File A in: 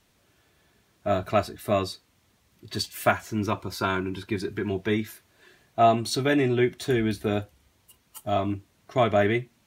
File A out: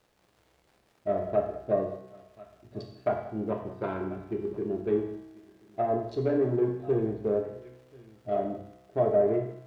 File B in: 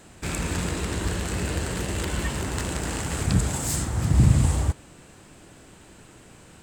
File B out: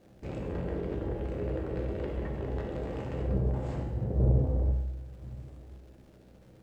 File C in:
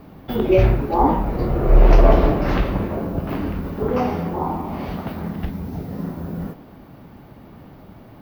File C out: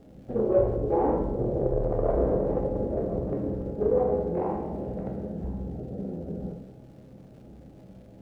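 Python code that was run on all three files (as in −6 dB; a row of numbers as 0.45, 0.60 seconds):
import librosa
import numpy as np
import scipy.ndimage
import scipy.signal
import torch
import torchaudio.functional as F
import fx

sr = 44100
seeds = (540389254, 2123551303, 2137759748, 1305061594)

p1 = fx.wiener(x, sr, points=41)
p2 = p1 + fx.echo_single(p1, sr, ms=1038, db=-22.5, dry=0)
p3 = 10.0 ** (-17.5 / 20.0) * np.tanh(p2 / 10.0 ** (-17.5 / 20.0))
p4 = fx.env_lowpass_down(p3, sr, base_hz=1000.0, full_db=-21.0)
p5 = fx.dynamic_eq(p4, sr, hz=450.0, q=1.8, threshold_db=-42.0, ratio=4.0, max_db=8)
p6 = fx.hum_notches(p5, sr, base_hz=50, count=2)
p7 = fx.rev_gated(p6, sr, seeds[0], gate_ms=240, shape='falling', drr_db=2.5)
p8 = fx.quant_dither(p7, sr, seeds[1], bits=10, dither='triangular')
p9 = fx.dmg_crackle(p8, sr, seeds[2], per_s=250.0, level_db=-40.0)
p10 = fx.lowpass(p9, sr, hz=2400.0, slope=6)
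p11 = fx.peak_eq(p10, sr, hz=570.0, db=7.0, octaves=1.1)
y = fx.comb_fb(p11, sr, f0_hz=64.0, decay_s=1.3, harmonics='all', damping=0.0, mix_pct=70)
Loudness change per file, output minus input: −3.5, −7.0, −7.0 LU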